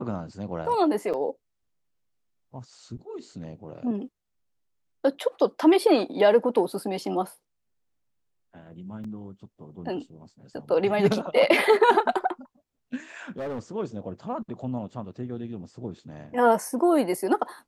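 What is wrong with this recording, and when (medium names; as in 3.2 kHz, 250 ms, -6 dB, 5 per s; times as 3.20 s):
1.13–1.14 s: dropout 6.5 ms
9.04 s: dropout 4.3 ms
13.29–13.59 s: clipped -29 dBFS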